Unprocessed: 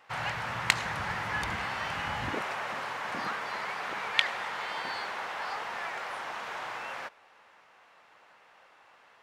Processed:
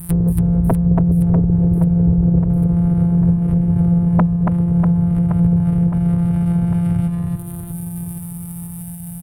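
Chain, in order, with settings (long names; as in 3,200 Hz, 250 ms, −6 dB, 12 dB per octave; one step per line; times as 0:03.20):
samples sorted by size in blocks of 256 samples
reverb reduction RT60 0.78 s
treble cut that deepens with the level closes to 490 Hz, closed at −33 dBFS
drawn EQ curve 140 Hz 0 dB, 450 Hz −29 dB, 860 Hz −23 dB, 2,600 Hz −26 dB, 6,500 Hz −24 dB, 9,500 Hz +9 dB
in parallel at −1.5 dB: downward compressor, threshold −54 dBFS, peak gain reduction 26.5 dB
on the sum: sine wavefolder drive 18 dB, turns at −17.5 dBFS
on a send: reverse bouncing-ball delay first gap 280 ms, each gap 1.3×, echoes 5
on the sum: level +6.5 dB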